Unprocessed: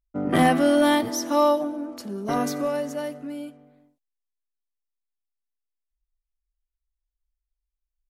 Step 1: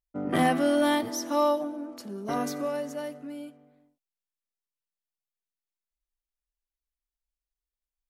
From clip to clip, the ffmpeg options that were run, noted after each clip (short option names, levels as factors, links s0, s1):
-af "lowshelf=f=83:g=-7,volume=0.596"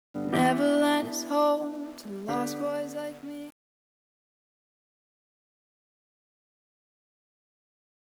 -af "aeval=exprs='val(0)*gte(abs(val(0)),0.00447)':c=same"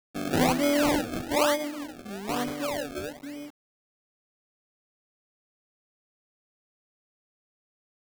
-af "acrusher=samples=31:mix=1:aa=0.000001:lfo=1:lforange=31:lforate=1.1"